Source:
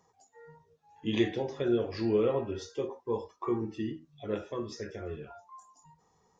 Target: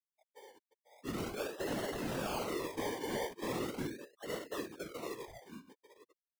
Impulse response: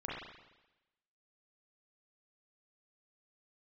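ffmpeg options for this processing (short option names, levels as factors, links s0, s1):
-filter_complex "[0:a]highpass=310,lowpass=3600,aecho=1:1:896|1792:0.119|0.0202,asettb=1/sr,asplit=3[s0][s1][s2];[s0]atrim=end=1.684[s3];[s1]atrim=start=1.68:end=3.87,asetpts=PTS-STARTPTS,afade=t=in:d=0.004:c=qsin,afade=t=out:st=2.186:d=0.004:c=qsin,acontrast=90[s4];[s2]atrim=start=3.866[s5];[s3][s4]acrossfade=d=0.004:c1=hsin:c2=qsin[s6];[s6][s5]acrossfade=d=0.004:c1=qsin:c2=hsin,afftfilt=real='re*lt(hypot(re,im),0.355)':imag='im*lt(hypot(re,im),0.355)':win_size=1024:overlap=0.75,asoftclip=type=hard:threshold=0.0211,afftfilt=real='re*gte(hypot(re,im),0.00891)':imag='im*gte(hypot(re,im),0.00891)':win_size=1024:overlap=0.75,acrusher=samples=26:mix=1:aa=0.000001:lfo=1:lforange=15.6:lforate=0.4,afftfilt=real='hypot(re,im)*cos(2*PI*random(0))':imag='hypot(re,im)*sin(2*PI*random(1))':win_size=512:overlap=0.75,volume=1.78"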